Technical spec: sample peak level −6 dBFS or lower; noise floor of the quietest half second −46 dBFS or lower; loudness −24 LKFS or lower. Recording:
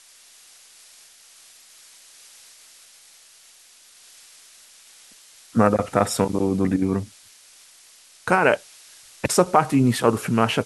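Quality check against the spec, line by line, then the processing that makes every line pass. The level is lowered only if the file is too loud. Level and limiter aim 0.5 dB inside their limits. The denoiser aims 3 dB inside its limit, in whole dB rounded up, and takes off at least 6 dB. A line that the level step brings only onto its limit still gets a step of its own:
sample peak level −3.0 dBFS: out of spec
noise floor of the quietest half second −51 dBFS: in spec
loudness −21.0 LKFS: out of spec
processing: level −3.5 dB

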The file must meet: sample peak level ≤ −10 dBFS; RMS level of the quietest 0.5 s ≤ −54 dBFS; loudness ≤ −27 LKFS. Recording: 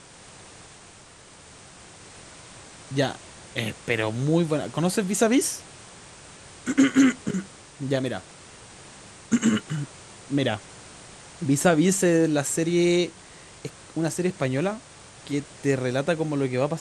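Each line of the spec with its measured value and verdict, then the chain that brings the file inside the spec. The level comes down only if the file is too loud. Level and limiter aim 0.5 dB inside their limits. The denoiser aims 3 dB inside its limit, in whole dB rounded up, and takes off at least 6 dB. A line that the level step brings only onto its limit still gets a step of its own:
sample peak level −6.0 dBFS: out of spec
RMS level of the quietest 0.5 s −49 dBFS: out of spec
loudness −24.5 LKFS: out of spec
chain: broadband denoise 6 dB, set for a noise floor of −49 dBFS
level −3 dB
brickwall limiter −10.5 dBFS

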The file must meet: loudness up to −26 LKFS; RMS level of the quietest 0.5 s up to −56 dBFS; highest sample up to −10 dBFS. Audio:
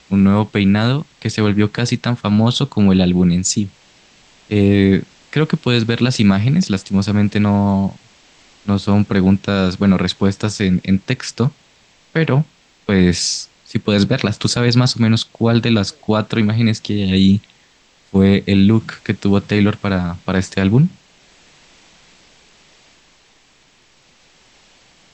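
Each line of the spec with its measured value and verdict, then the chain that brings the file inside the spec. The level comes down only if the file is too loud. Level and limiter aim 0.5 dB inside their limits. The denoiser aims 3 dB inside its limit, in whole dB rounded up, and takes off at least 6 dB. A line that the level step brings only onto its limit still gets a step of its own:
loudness −16.0 LKFS: out of spec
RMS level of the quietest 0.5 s −53 dBFS: out of spec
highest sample −2.5 dBFS: out of spec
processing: level −10.5 dB

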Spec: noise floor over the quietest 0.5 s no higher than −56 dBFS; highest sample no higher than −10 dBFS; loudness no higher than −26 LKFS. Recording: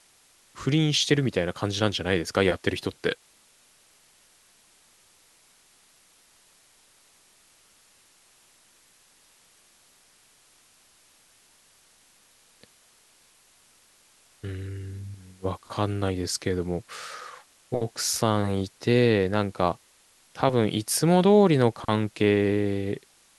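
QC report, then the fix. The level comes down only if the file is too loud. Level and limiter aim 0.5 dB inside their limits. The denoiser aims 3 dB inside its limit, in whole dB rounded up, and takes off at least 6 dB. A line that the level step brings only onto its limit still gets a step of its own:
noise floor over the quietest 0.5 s −60 dBFS: in spec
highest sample −6.5 dBFS: out of spec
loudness −25.0 LKFS: out of spec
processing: level −1.5 dB
brickwall limiter −10.5 dBFS

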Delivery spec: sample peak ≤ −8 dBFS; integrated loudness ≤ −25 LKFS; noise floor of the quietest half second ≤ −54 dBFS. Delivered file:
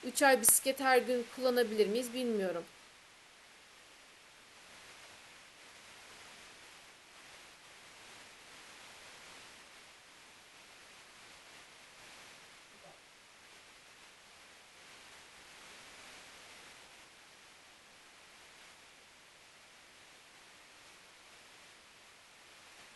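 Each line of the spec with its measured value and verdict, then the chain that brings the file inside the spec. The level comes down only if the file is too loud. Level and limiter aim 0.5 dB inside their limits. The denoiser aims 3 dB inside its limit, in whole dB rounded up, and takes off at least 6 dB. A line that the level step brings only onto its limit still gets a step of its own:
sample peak −10.5 dBFS: in spec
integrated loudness −30.0 LKFS: in spec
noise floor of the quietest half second −60 dBFS: in spec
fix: no processing needed

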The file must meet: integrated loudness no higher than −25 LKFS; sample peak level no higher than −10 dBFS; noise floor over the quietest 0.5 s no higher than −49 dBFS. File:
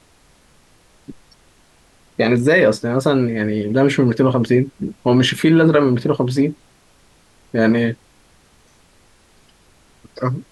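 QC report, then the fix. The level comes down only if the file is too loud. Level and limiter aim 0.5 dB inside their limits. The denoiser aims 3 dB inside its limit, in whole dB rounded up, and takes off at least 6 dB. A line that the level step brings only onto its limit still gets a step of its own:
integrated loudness −17.0 LKFS: out of spec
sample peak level −4.0 dBFS: out of spec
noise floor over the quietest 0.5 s −53 dBFS: in spec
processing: level −8.5 dB

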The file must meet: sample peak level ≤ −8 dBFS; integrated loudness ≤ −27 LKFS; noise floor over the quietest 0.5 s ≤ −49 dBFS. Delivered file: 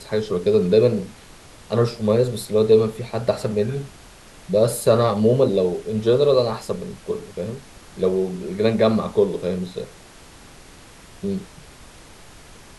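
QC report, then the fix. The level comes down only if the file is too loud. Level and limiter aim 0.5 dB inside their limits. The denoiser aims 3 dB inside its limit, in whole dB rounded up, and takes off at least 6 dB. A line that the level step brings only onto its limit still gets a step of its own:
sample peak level −4.0 dBFS: out of spec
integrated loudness −21.0 LKFS: out of spec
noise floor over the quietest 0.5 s −45 dBFS: out of spec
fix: level −6.5 dB

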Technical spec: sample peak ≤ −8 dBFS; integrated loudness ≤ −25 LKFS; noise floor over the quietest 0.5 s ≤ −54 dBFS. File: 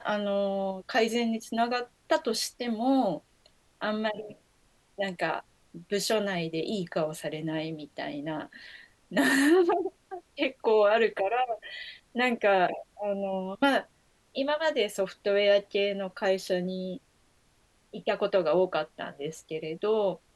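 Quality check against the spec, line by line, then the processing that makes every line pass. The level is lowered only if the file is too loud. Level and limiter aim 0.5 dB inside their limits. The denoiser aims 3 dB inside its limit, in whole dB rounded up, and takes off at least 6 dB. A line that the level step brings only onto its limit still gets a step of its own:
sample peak −11.0 dBFS: in spec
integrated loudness −28.5 LKFS: in spec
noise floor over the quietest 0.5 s −66 dBFS: in spec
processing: no processing needed

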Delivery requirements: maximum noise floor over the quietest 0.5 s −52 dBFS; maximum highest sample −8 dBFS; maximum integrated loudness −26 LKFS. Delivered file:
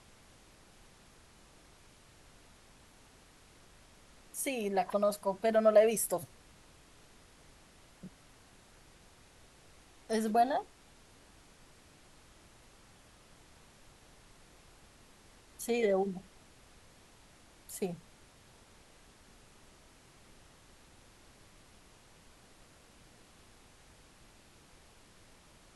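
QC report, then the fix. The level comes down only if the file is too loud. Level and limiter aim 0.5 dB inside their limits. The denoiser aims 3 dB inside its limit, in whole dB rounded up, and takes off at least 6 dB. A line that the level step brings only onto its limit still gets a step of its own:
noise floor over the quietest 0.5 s −60 dBFS: in spec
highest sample −13.5 dBFS: in spec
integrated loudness −31.5 LKFS: in spec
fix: no processing needed

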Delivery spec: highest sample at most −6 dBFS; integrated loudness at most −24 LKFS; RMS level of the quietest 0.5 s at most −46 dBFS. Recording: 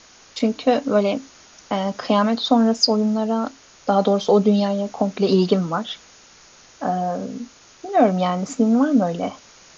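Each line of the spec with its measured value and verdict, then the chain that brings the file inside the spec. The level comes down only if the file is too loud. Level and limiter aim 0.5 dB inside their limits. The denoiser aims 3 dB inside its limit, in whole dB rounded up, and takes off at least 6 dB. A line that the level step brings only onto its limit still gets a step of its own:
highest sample −4.0 dBFS: out of spec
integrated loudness −20.0 LKFS: out of spec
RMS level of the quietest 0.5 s −49 dBFS: in spec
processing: level −4.5 dB

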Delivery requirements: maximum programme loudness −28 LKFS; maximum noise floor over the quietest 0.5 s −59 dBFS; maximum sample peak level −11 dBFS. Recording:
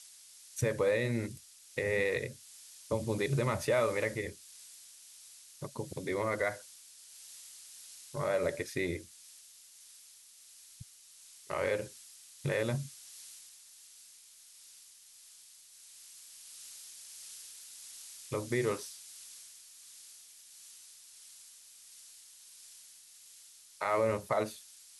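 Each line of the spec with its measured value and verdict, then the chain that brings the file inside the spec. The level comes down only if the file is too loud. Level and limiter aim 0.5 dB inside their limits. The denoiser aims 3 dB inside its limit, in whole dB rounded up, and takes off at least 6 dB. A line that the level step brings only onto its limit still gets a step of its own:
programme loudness −35.0 LKFS: in spec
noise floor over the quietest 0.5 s −57 dBFS: out of spec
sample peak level −18.0 dBFS: in spec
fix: broadband denoise 6 dB, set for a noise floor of −57 dBFS

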